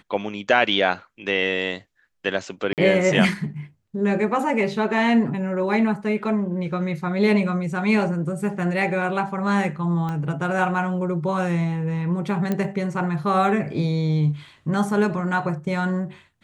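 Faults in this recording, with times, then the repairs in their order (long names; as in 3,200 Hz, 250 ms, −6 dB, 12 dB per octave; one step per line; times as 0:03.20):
0:02.73–0:02.78: drop-out 48 ms
0:10.09: click −18 dBFS
0:12.52: click −12 dBFS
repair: click removal
repair the gap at 0:02.73, 48 ms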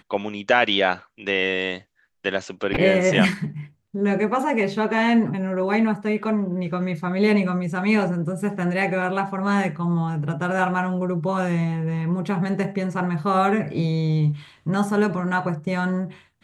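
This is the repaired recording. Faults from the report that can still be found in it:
0:10.09: click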